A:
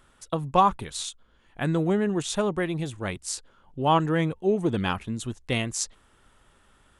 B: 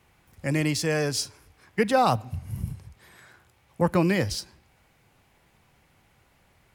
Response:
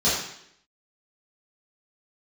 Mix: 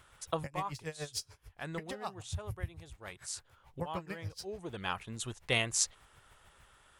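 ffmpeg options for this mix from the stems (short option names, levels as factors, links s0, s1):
-filter_complex "[0:a]lowshelf=f=120:g=-9.5,volume=1[s0];[1:a]lowshelf=f=140:g=10.5,acompressor=threshold=0.0316:ratio=5,aeval=exprs='val(0)*pow(10,-29*(0.5-0.5*cos(2*PI*6.8*n/s))/20)':c=same,volume=0.944,asplit=2[s1][s2];[s2]apad=whole_len=308628[s3];[s0][s3]sidechaincompress=threshold=0.00224:ratio=4:attack=22:release=764[s4];[s4][s1]amix=inputs=2:normalize=0,equalizer=f=250:w=1.1:g=-10.5"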